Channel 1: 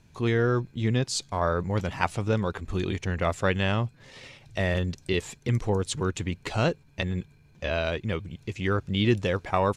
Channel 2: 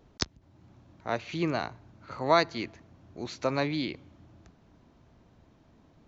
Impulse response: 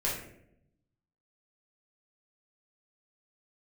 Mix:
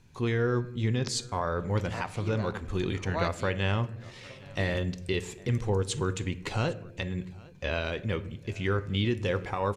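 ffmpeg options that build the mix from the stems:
-filter_complex "[0:a]bandreject=frequency=640:width=12,alimiter=limit=-16.5dB:level=0:latency=1:release=247,volume=-2.5dB,asplit=4[link_01][link_02][link_03][link_04];[link_02]volume=-17dB[link_05];[link_03]volume=-22.5dB[link_06];[1:a]adelay=850,volume=-11.5dB,asplit=2[link_07][link_08];[link_08]volume=-20.5dB[link_09];[link_04]apad=whole_len=305285[link_10];[link_07][link_10]sidechaingate=range=-33dB:threshold=-45dB:ratio=16:detection=peak[link_11];[2:a]atrim=start_sample=2205[link_12];[link_05][link_09]amix=inputs=2:normalize=0[link_13];[link_13][link_12]afir=irnorm=-1:irlink=0[link_14];[link_06]aecho=0:1:805:1[link_15];[link_01][link_11][link_14][link_15]amix=inputs=4:normalize=0"

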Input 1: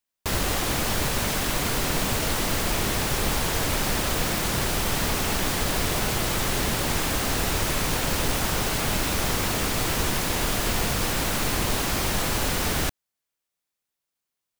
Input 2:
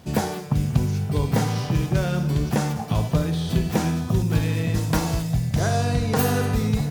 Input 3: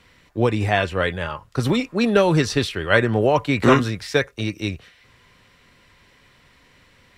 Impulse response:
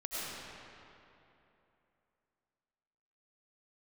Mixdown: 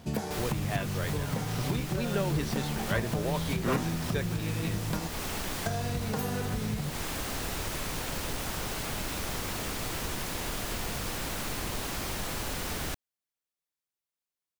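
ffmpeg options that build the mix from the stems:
-filter_complex "[0:a]adelay=50,volume=-8.5dB[link_01];[1:a]flanger=delay=4.3:depth=1.5:regen=80:speed=0.36:shape=triangular,volume=2dB,asplit=3[link_02][link_03][link_04];[link_02]atrim=end=5.08,asetpts=PTS-STARTPTS,afade=type=out:start_time=5.076:duration=0.004:curve=hsin[link_05];[link_03]atrim=start=5.08:end=5.66,asetpts=PTS-STARTPTS,volume=0[link_06];[link_04]atrim=start=5.66,asetpts=PTS-STARTPTS,afade=type=in:duration=0.004:curve=hsin[link_07];[link_05][link_06][link_07]concat=n=3:v=0:a=1[link_08];[2:a]volume=-15.5dB[link_09];[link_01][link_08]amix=inputs=2:normalize=0,acompressor=threshold=-28dB:ratio=10,volume=0dB[link_10];[link_09][link_10]amix=inputs=2:normalize=0"

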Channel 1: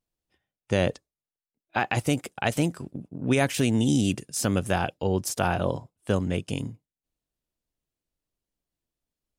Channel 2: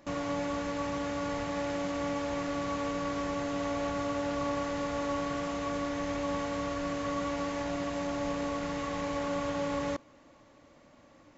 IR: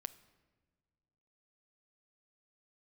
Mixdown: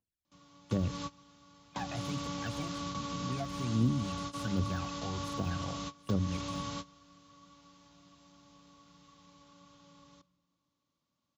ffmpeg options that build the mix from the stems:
-filter_complex "[0:a]deesser=0.95,bandreject=frequency=50:width_type=h:width=6,bandreject=frequency=100:width_type=h:width=6,bandreject=frequency=150:width_type=h:width=6,aphaser=in_gain=1:out_gain=1:delay=1.6:decay=0.79:speed=1.3:type=triangular,volume=-13dB,asplit=2[link_01][link_02];[1:a]firequalizer=gain_entry='entry(120,0);entry(170,5);entry(260,-3);entry(450,-7);entry(680,-10);entry(1100,2);entry(1800,-8);entry(3400,8);entry(5600,8);entry(8400,2)':delay=0.05:min_phase=1,adelay=250,volume=-1.5dB,asplit=2[link_03][link_04];[link_04]volume=-23dB[link_05];[link_02]apad=whole_len=517111[link_06];[link_03][link_06]sidechaingate=range=-33dB:threshold=-54dB:ratio=16:detection=peak[link_07];[2:a]atrim=start_sample=2205[link_08];[link_05][link_08]afir=irnorm=-1:irlink=0[link_09];[link_01][link_07][link_09]amix=inputs=3:normalize=0,highpass=57,acrossover=split=240[link_10][link_11];[link_11]acompressor=threshold=-37dB:ratio=5[link_12];[link_10][link_12]amix=inputs=2:normalize=0"

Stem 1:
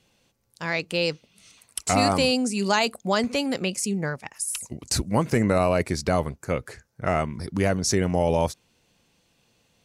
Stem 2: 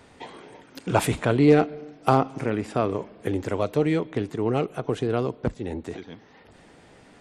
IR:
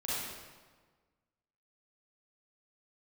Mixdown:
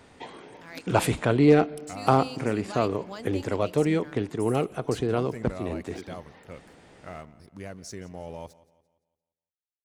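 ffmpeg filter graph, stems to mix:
-filter_complex "[0:a]aeval=exprs='sgn(val(0))*max(abs(val(0))-0.00841,0)':channel_layout=same,volume=-16.5dB,asplit=2[link_01][link_02];[link_02]volume=-19.5dB[link_03];[1:a]volume=-1dB[link_04];[link_03]aecho=0:1:172|344|516|688|860|1032:1|0.4|0.16|0.064|0.0256|0.0102[link_05];[link_01][link_04][link_05]amix=inputs=3:normalize=0"

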